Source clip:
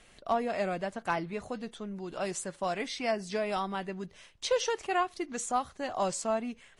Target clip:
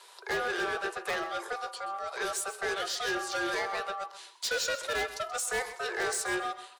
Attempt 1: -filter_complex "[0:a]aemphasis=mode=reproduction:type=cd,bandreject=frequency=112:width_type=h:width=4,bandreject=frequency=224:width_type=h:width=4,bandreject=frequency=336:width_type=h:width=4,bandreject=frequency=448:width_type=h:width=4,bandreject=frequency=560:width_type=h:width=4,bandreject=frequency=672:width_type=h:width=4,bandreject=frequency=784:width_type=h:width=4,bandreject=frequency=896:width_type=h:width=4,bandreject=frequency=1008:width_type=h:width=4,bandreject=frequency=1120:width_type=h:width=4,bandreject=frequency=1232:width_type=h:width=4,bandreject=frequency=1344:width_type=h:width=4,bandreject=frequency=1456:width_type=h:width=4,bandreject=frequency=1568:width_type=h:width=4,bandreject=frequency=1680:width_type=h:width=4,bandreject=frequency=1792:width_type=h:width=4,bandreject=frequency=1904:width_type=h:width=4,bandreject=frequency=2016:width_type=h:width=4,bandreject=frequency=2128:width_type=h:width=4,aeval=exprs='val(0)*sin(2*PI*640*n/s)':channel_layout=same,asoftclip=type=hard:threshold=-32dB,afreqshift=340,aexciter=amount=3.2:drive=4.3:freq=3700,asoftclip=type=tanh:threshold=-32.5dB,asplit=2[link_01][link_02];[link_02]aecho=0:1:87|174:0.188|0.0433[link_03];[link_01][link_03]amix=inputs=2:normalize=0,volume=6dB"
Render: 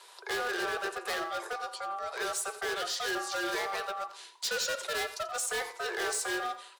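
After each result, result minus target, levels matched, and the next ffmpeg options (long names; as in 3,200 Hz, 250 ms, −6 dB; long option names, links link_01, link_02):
hard clipping: distortion +15 dB; echo 44 ms early
-filter_complex "[0:a]aemphasis=mode=reproduction:type=cd,bandreject=frequency=112:width_type=h:width=4,bandreject=frequency=224:width_type=h:width=4,bandreject=frequency=336:width_type=h:width=4,bandreject=frequency=448:width_type=h:width=4,bandreject=frequency=560:width_type=h:width=4,bandreject=frequency=672:width_type=h:width=4,bandreject=frequency=784:width_type=h:width=4,bandreject=frequency=896:width_type=h:width=4,bandreject=frequency=1008:width_type=h:width=4,bandreject=frequency=1120:width_type=h:width=4,bandreject=frequency=1232:width_type=h:width=4,bandreject=frequency=1344:width_type=h:width=4,bandreject=frequency=1456:width_type=h:width=4,bandreject=frequency=1568:width_type=h:width=4,bandreject=frequency=1680:width_type=h:width=4,bandreject=frequency=1792:width_type=h:width=4,bandreject=frequency=1904:width_type=h:width=4,bandreject=frequency=2016:width_type=h:width=4,bandreject=frequency=2128:width_type=h:width=4,aeval=exprs='val(0)*sin(2*PI*640*n/s)':channel_layout=same,asoftclip=type=hard:threshold=-22.5dB,afreqshift=340,aexciter=amount=3.2:drive=4.3:freq=3700,asoftclip=type=tanh:threshold=-32.5dB,asplit=2[link_01][link_02];[link_02]aecho=0:1:87|174:0.188|0.0433[link_03];[link_01][link_03]amix=inputs=2:normalize=0,volume=6dB"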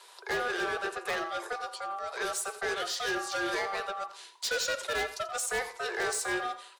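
echo 44 ms early
-filter_complex "[0:a]aemphasis=mode=reproduction:type=cd,bandreject=frequency=112:width_type=h:width=4,bandreject=frequency=224:width_type=h:width=4,bandreject=frequency=336:width_type=h:width=4,bandreject=frequency=448:width_type=h:width=4,bandreject=frequency=560:width_type=h:width=4,bandreject=frequency=672:width_type=h:width=4,bandreject=frequency=784:width_type=h:width=4,bandreject=frequency=896:width_type=h:width=4,bandreject=frequency=1008:width_type=h:width=4,bandreject=frequency=1120:width_type=h:width=4,bandreject=frequency=1232:width_type=h:width=4,bandreject=frequency=1344:width_type=h:width=4,bandreject=frequency=1456:width_type=h:width=4,bandreject=frequency=1568:width_type=h:width=4,bandreject=frequency=1680:width_type=h:width=4,bandreject=frequency=1792:width_type=h:width=4,bandreject=frequency=1904:width_type=h:width=4,bandreject=frequency=2016:width_type=h:width=4,bandreject=frequency=2128:width_type=h:width=4,aeval=exprs='val(0)*sin(2*PI*640*n/s)':channel_layout=same,asoftclip=type=hard:threshold=-22.5dB,afreqshift=340,aexciter=amount=3.2:drive=4.3:freq=3700,asoftclip=type=tanh:threshold=-32.5dB,asplit=2[link_01][link_02];[link_02]aecho=0:1:131|262:0.188|0.0433[link_03];[link_01][link_03]amix=inputs=2:normalize=0,volume=6dB"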